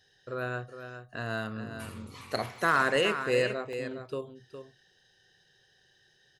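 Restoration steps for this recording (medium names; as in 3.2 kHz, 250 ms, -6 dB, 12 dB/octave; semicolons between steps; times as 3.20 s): clip repair -15 dBFS; interpolate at 2.23/2.56/2.96/3.73 s, 1.2 ms; inverse comb 411 ms -9.5 dB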